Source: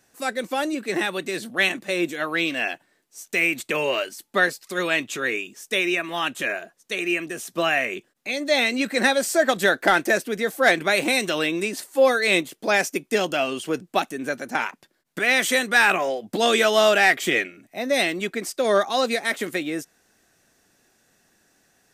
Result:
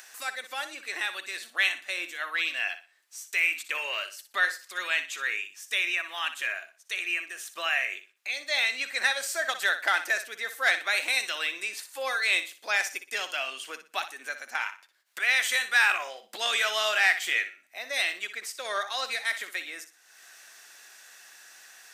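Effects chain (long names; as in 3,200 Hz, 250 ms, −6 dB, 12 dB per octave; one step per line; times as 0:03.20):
high-pass filter 1,300 Hz 12 dB per octave
parametric band 12,000 Hz −4 dB 1.8 octaves
upward compression, threshold −33 dBFS
flutter between parallel walls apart 10.4 metres, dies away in 0.32 s
level −2.5 dB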